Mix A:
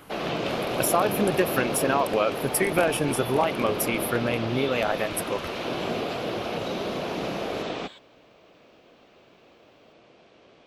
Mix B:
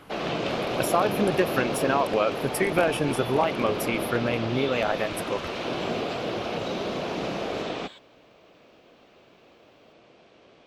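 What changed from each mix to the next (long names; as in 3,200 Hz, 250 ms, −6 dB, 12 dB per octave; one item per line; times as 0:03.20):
speech: add high-shelf EQ 8,300 Hz −11.5 dB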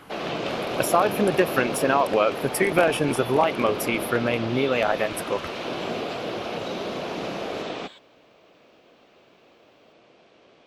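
speech +3.5 dB
master: add low-shelf EQ 120 Hz −6.5 dB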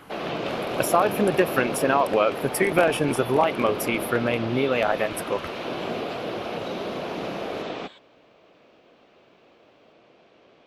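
speech: add high-shelf EQ 8,300 Hz +11.5 dB
master: add high-shelf EQ 6,000 Hz −9.5 dB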